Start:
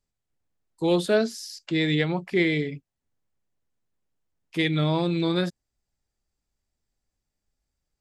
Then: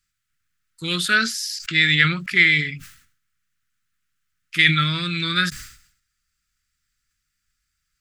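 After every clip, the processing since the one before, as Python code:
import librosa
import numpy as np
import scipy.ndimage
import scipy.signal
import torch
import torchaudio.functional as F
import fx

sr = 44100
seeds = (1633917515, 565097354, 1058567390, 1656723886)

y = fx.curve_eq(x, sr, hz=(150.0, 860.0, 1300.0, 3800.0), db=(0, -23, 14, 9))
y = fx.sustainer(y, sr, db_per_s=93.0)
y = y * 10.0 ** (1.5 / 20.0)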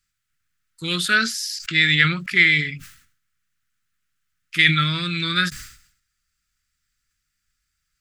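y = fx.end_taper(x, sr, db_per_s=360.0)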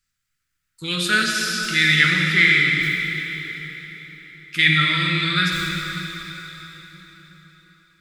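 y = fx.rev_plate(x, sr, seeds[0], rt60_s=4.3, hf_ratio=0.9, predelay_ms=0, drr_db=-1.0)
y = y * 10.0 ** (-1.5 / 20.0)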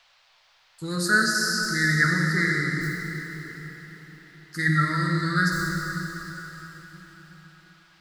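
y = scipy.signal.sosfilt(scipy.signal.ellip(3, 1.0, 40, [1800.0, 4400.0], 'bandstop', fs=sr, output='sos'), x)
y = fx.dmg_noise_band(y, sr, seeds[1], low_hz=620.0, high_hz=4800.0, level_db=-61.0)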